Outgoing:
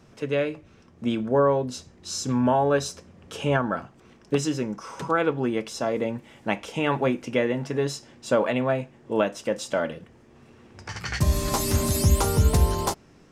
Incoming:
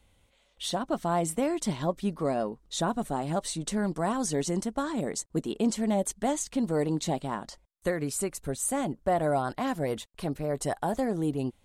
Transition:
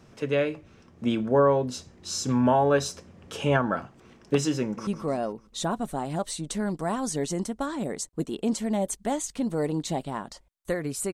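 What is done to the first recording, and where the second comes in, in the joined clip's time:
outgoing
4.62–4.87 s: echo throw 150 ms, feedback 55%, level -9.5 dB
4.87 s: go over to incoming from 2.04 s

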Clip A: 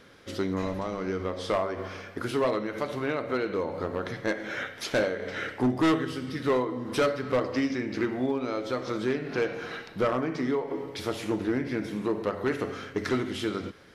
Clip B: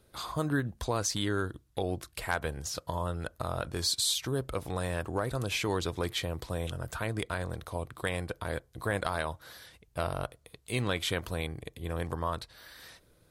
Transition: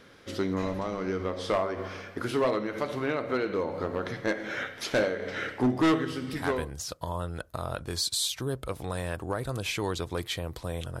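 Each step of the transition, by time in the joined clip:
clip A
6.46 s: go over to clip B from 2.32 s, crossfade 0.54 s equal-power

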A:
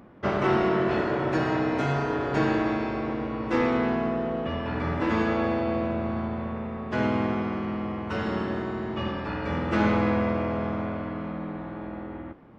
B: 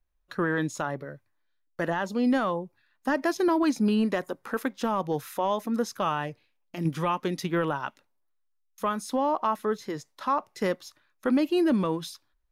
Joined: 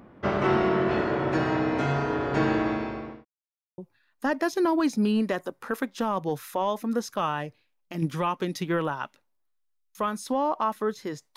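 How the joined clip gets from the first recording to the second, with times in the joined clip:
A
2.50–3.25 s: fade out equal-power
3.25–3.78 s: mute
3.78 s: go over to B from 2.61 s

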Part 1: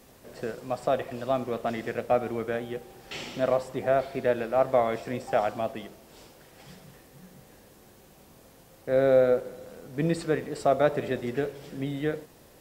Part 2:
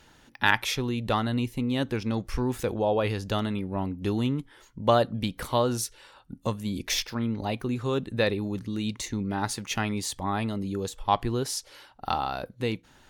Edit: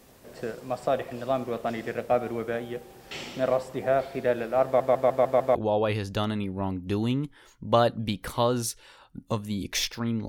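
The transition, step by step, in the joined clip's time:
part 1
4.65 s: stutter in place 0.15 s, 6 plays
5.55 s: go over to part 2 from 2.70 s

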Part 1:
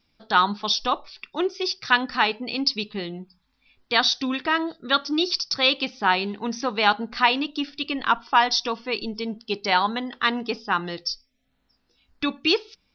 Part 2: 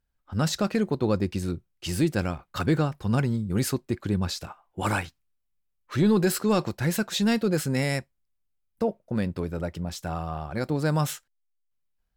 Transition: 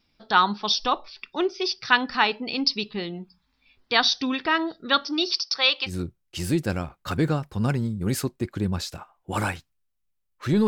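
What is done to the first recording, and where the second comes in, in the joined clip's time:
part 1
5.06–5.94 s: high-pass 280 Hz -> 890 Hz
5.89 s: go over to part 2 from 1.38 s, crossfade 0.10 s

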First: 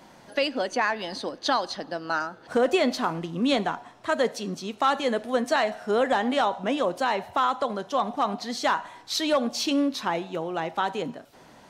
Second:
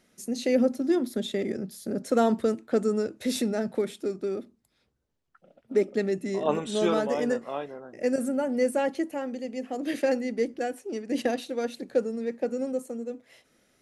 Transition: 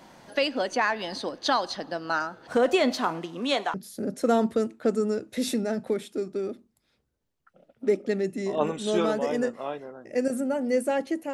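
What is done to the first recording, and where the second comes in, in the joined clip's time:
first
2.97–3.74 s: high-pass 150 Hz -> 610 Hz
3.74 s: go over to second from 1.62 s

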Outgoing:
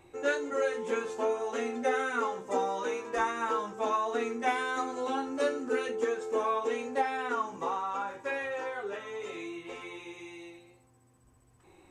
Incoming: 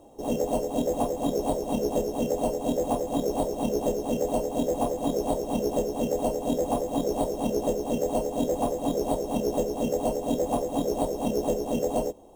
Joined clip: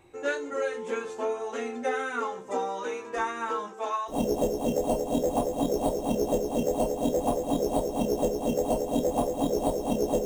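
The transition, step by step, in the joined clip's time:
outgoing
3.67–4.15 s: high-pass 230 Hz -> 1.2 kHz
4.11 s: go over to incoming from 1.65 s, crossfade 0.08 s

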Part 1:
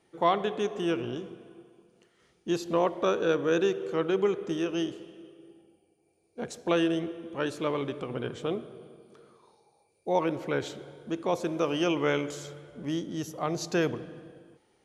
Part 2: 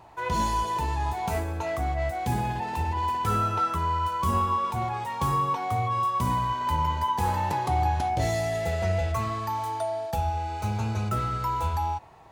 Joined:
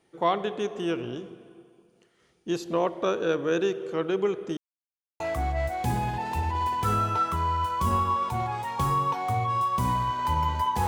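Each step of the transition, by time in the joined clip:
part 1
4.57–5.20 s: mute
5.20 s: go over to part 2 from 1.62 s

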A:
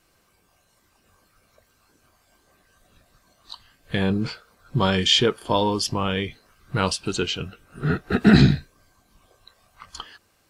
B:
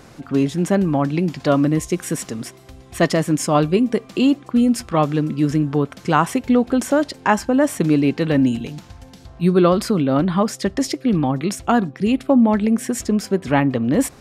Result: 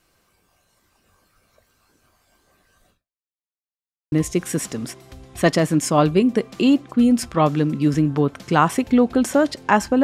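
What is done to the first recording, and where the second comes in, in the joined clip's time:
A
2.90–3.34 s: fade out exponential
3.34–4.12 s: mute
4.12 s: go over to B from 1.69 s

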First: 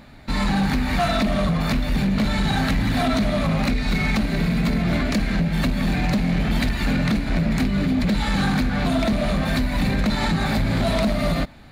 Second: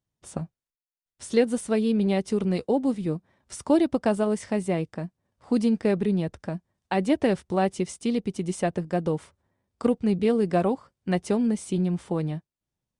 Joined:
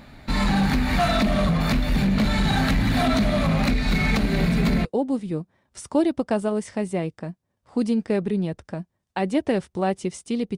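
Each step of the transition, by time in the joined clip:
first
4.12 s: add second from 1.87 s 0.73 s -6.5 dB
4.85 s: go over to second from 2.60 s

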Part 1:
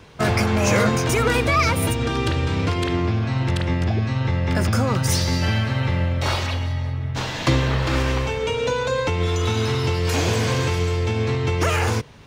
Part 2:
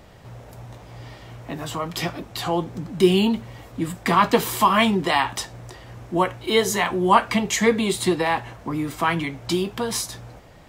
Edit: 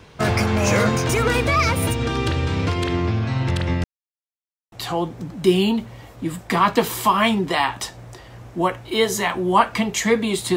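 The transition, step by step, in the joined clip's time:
part 1
3.84–4.72 s: mute
4.72 s: go over to part 2 from 2.28 s

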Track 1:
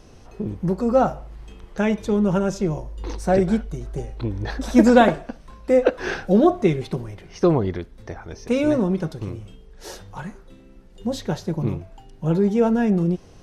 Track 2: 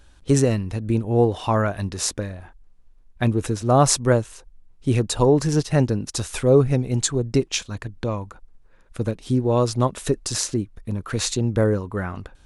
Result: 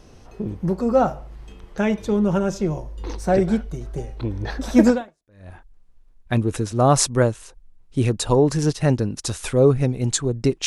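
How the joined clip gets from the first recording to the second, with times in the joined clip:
track 1
5.19 s: go over to track 2 from 2.09 s, crossfade 0.58 s exponential

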